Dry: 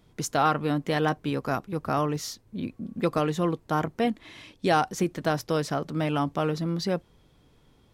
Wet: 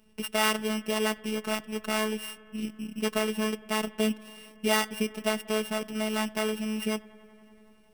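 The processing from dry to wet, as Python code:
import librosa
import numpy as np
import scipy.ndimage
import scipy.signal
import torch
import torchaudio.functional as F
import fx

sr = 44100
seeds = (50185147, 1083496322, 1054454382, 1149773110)

y = np.r_[np.sort(x[:len(x) // 16 * 16].reshape(-1, 16), axis=1).ravel(), x[len(x) // 16 * 16:]]
y = fx.robotise(y, sr, hz=216.0)
y = fx.echo_bbd(y, sr, ms=93, stages=2048, feedback_pct=85, wet_db=-24.0)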